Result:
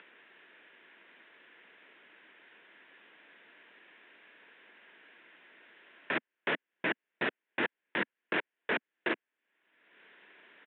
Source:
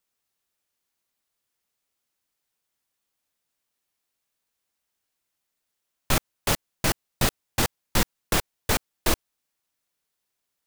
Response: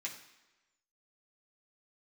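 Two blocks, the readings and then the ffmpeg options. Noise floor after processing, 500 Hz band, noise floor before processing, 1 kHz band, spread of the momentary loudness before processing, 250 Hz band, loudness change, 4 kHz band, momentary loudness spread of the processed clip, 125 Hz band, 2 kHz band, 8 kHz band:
below −85 dBFS, −6.0 dB, −81 dBFS, −8.5 dB, 2 LU, −8.0 dB, −8.5 dB, −12.5 dB, 2 LU, −22.5 dB, −1.0 dB, below −40 dB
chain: -af "acompressor=mode=upward:threshold=-24dB:ratio=2.5,aresample=8000,asoftclip=type=tanh:threshold=-19.5dB,aresample=44100,highpass=frequency=240:width=0.5412,highpass=frequency=240:width=1.3066,equalizer=frequency=250:width_type=q:width=4:gain=-4,equalizer=frequency=550:width_type=q:width=4:gain=-4,equalizer=frequency=790:width_type=q:width=4:gain=-8,equalizer=frequency=1200:width_type=q:width=4:gain=-8,equalizer=frequency=1700:width_type=q:width=4:gain=6,lowpass=frequency=2700:width=0.5412,lowpass=frequency=2700:width=1.3066"

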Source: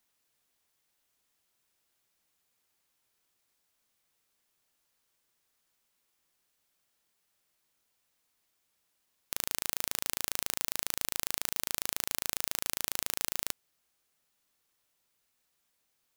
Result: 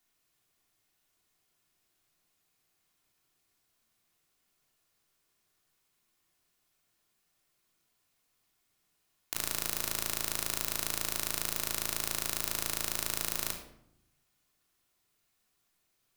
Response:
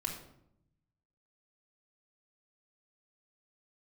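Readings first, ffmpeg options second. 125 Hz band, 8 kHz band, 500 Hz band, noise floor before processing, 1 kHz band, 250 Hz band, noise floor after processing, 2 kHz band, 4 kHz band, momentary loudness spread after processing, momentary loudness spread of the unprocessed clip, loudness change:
+5.5 dB, +0.5 dB, +3.0 dB, −78 dBFS, +1.5 dB, +4.0 dB, −77 dBFS, +1.0 dB, +0.5 dB, 2 LU, 2 LU, +0.5 dB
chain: -filter_complex "[1:a]atrim=start_sample=2205[link_01];[0:a][link_01]afir=irnorm=-1:irlink=0"

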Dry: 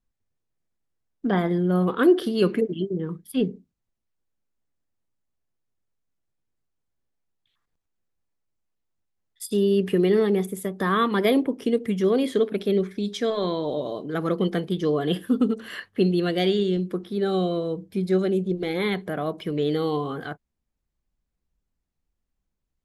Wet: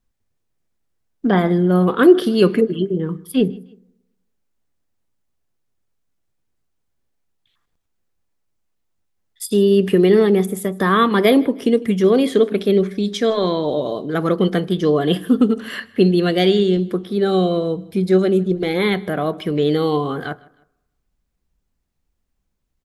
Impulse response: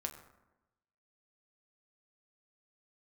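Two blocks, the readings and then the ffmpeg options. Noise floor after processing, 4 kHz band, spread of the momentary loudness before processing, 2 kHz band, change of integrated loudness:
−72 dBFS, +7.0 dB, 9 LU, +7.0 dB, +7.0 dB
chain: -filter_complex "[0:a]aecho=1:1:156|312:0.0631|0.024,asplit=2[link_01][link_02];[1:a]atrim=start_sample=2205[link_03];[link_02][link_03]afir=irnorm=-1:irlink=0,volume=-14dB[link_04];[link_01][link_04]amix=inputs=2:normalize=0,volume=5.5dB"

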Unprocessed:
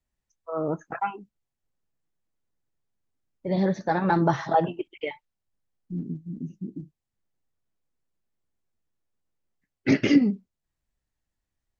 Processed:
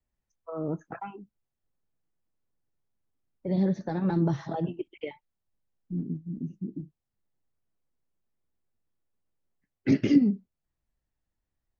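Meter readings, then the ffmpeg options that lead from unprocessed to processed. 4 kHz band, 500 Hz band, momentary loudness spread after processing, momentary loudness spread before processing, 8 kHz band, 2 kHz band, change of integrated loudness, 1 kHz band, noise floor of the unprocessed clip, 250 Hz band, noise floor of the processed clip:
−8.5 dB, −6.0 dB, 18 LU, 16 LU, can't be measured, −11.5 dB, −2.5 dB, −13.0 dB, −85 dBFS, −1.5 dB, below −85 dBFS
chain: -filter_complex "[0:a]acrossover=split=380|3000[link_01][link_02][link_03];[link_02]acompressor=threshold=-38dB:ratio=4[link_04];[link_01][link_04][link_03]amix=inputs=3:normalize=0,highshelf=frequency=2200:gain=-8.5"

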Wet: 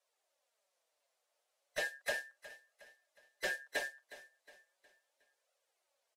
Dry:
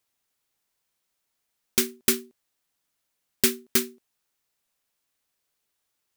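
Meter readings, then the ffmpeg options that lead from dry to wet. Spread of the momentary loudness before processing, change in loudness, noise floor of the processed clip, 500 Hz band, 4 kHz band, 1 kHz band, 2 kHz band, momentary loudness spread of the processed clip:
6 LU, −15.0 dB, −84 dBFS, −10.5 dB, −15.0 dB, −5.5 dB, −2.0 dB, 18 LU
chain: -filter_complex "[0:a]afftfilt=real='real(if(between(b,1,1012),(2*floor((b-1)/92)+1)*92-b,b),0)':imag='imag(if(between(b,1,1012),(2*floor((b-1)/92)+1)*92-b,b),0)*if(between(b,1,1012),-1,1)':win_size=2048:overlap=0.75,lowpass=10000,acrossover=split=2800[link_01][link_02];[link_02]acompressor=threshold=-37dB:ratio=4:attack=1:release=60[link_03];[link_01][link_03]amix=inputs=2:normalize=0,highpass=frequency=540:width_type=q:width=4.9,afreqshift=34,asoftclip=type=tanh:threshold=-26.5dB,flanger=delay=1.4:depth=7.4:regen=-4:speed=0.36:shape=triangular,aecho=1:1:363|726|1089|1452:0.15|0.0643|0.0277|0.0119,volume=-1.5dB" -ar 48000 -c:a aac -b:a 48k

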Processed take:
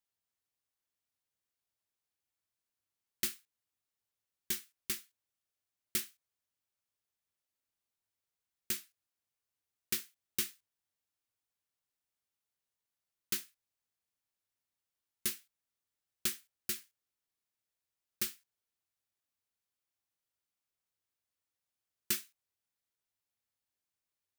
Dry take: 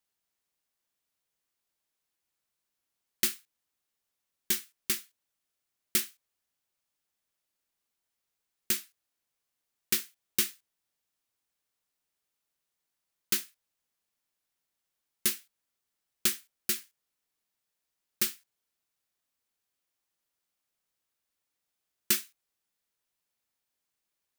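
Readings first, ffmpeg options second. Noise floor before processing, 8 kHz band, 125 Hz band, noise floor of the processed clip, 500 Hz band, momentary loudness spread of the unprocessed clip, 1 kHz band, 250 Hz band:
−85 dBFS, −7.0 dB, −4.0 dB, below −85 dBFS, −7.0 dB, 5 LU, −7.0 dB, −7.0 dB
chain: -af "equalizer=frequency=99:width_type=o:width=0.34:gain=11,volume=-7dB"

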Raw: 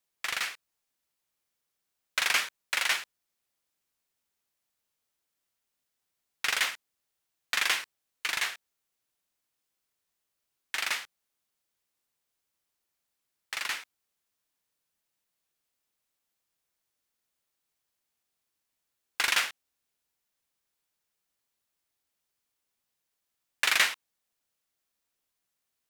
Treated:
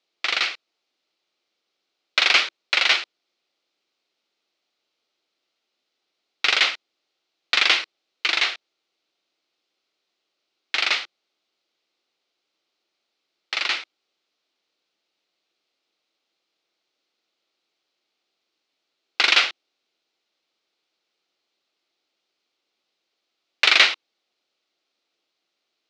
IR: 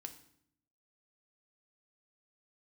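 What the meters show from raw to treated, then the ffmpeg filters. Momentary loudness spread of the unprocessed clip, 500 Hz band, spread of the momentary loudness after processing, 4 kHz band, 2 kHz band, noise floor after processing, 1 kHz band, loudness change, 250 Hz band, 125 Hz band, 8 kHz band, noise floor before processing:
13 LU, +10.5 dB, 15 LU, +11.5 dB, +8.0 dB, −79 dBFS, +7.5 dB, +9.0 dB, +11.0 dB, can't be measured, −0.5 dB, −83 dBFS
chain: -af "highpass=320,equalizer=frequency=340:width_type=q:width=4:gain=6,equalizer=frequency=980:width_type=q:width=4:gain=-7,equalizer=frequency=1700:width_type=q:width=4:gain=-8,equalizer=frequency=4100:width_type=q:width=4:gain=3,lowpass=frequency=4900:width=0.5412,lowpass=frequency=4900:width=1.3066,acontrast=56,volume=5dB"

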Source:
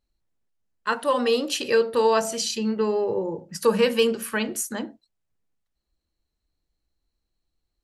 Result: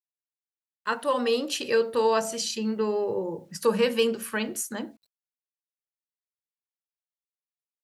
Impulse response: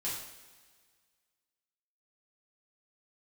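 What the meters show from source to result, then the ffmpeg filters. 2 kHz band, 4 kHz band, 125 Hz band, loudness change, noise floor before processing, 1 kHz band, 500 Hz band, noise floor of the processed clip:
−3.0 dB, −3.0 dB, −3.0 dB, −3.0 dB, −81 dBFS, −3.0 dB, −3.0 dB, below −85 dBFS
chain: -af "highpass=41,acrusher=bits=10:mix=0:aa=0.000001,volume=-3dB"

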